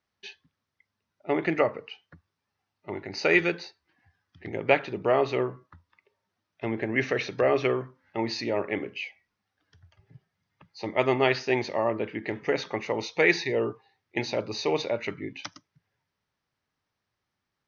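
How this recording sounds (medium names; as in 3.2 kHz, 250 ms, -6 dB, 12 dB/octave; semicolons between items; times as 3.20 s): noise floor -83 dBFS; spectral tilt -3.5 dB/octave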